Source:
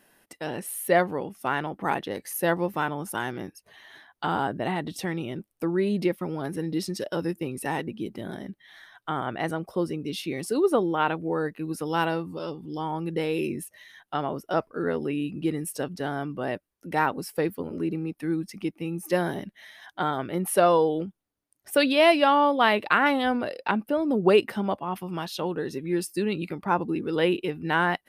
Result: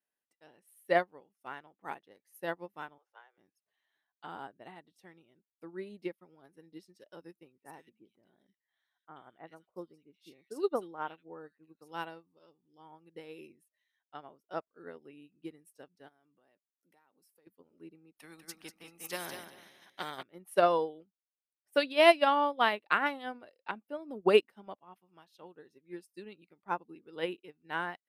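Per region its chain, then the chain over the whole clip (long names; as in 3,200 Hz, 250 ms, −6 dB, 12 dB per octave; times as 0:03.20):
0:02.98–0:03.38: Butterworth high-pass 440 Hz 48 dB per octave + high-frequency loss of the air 230 metres
0:07.52–0:11.92: parametric band 9,800 Hz −5 dB 0.23 octaves + multiband delay without the direct sound lows, highs 80 ms, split 2,000 Hz
0:16.08–0:17.47: high-pass filter 130 Hz + high-shelf EQ 5,800 Hz +11 dB + downward compressor, threshold −33 dBFS
0:18.15–0:20.23: repeating echo 194 ms, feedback 29%, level −7 dB + every bin compressed towards the loudest bin 2 to 1
whole clip: low-shelf EQ 180 Hz −11 dB; expander for the loud parts 2.5 to 1, over −37 dBFS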